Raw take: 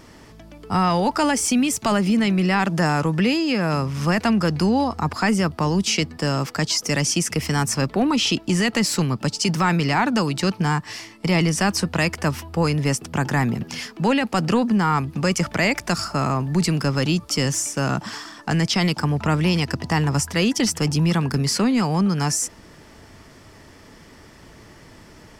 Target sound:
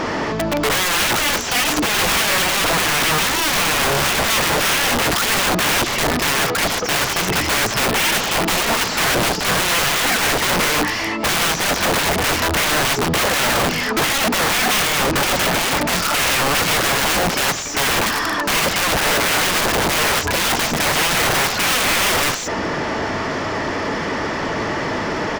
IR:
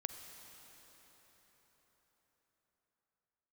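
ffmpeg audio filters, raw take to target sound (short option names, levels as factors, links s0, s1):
-filter_complex "[0:a]bandreject=f=60:t=h:w=6,bandreject=f=120:t=h:w=6,bandreject=f=180:t=h:w=6,bandreject=f=240:t=h:w=6,bandreject=f=300:t=h:w=6,bandreject=f=360:t=h:w=6,bandreject=f=420:t=h:w=6,aresample=16000,aeval=exprs='0.398*sin(PI/2*7.08*val(0)/0.398)':c=same,aresample=44100,asplit=2[s0][s1];[s1]highpass=f=720:p=1,volume=22.4,asoftclip=type=tanh:threshold=0.794[s2];[s0][s2]amix=inputs=2:normalize=0,lowpass=f=1000:p=1,volume=0.501,aeval=exprs='(mod(2.37*val(0)+1,2)-1)/2.37':c=same,volume=0.501"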